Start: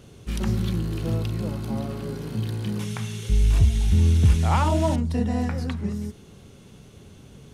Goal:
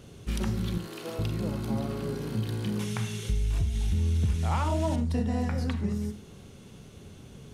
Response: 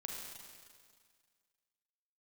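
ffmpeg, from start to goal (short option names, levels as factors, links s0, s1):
-filter_complex "[0:a]asettb=1/sr,asplit=3[s0][s1][s2];[s0]atrim=end=0.784[s3];[s1]atrim=start=0.78:end=1.19,asetpts=PTS-STARTPTS,afade=t=in:d=0.004:c=qsin,afade=t=out:st=0.406:d=0.004:c=qsin,highpass=480[s4];[s2]atrim=start=1.186[s5];[s3][s4]acrossfade=d=0.004:c1=hsin:c2=qsin[s6];[s6][s5]acrossfade=d=0.004:c1=qsin:c2=hsin,acompressor=threshold=0.0708:ratio=5,asplit=2[s7][s8];[1:a]atrim=start_sample=2205,atrim=end_sample=4410[s9];[s8][s9]afir=irnorm=-1:irlink=0,volume=1[s10];[s7][s10]amix=inputs=2:normalize=0,volume=0.562"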